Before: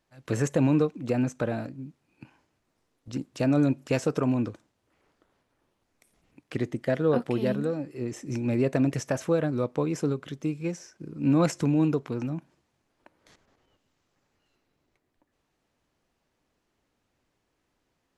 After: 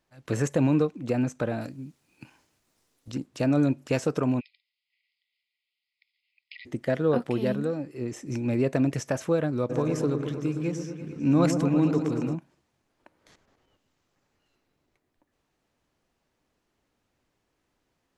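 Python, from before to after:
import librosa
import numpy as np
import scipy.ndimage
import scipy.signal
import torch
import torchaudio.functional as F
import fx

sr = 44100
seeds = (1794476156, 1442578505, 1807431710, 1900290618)

y = fx.high_shelf(x, sr, hz=3300.0, db=12.0, at=(1.61, 3.12))
y = fx.brickwall_bandpass(y, sr, low_hz=1900.0, high_hz=5200.0, at=(4.39, 6.65), fade=0.02)
y = fx.echo_opening(y, sr, ms=113, hz=750, octaves=1, feedback_pct=70, wet_db=-6, at=(9.69, 12.34), fade=0.02)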